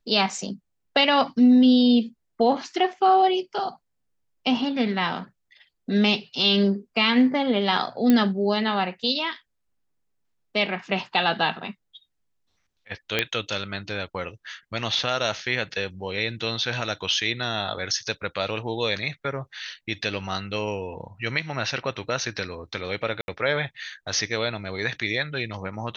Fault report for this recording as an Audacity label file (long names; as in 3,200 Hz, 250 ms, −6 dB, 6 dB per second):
8.100000	8.100000	click −7 dBFS
13.190000	13.190000	click −7 dBFS
23.210000	23.280000	drop-out 71 ms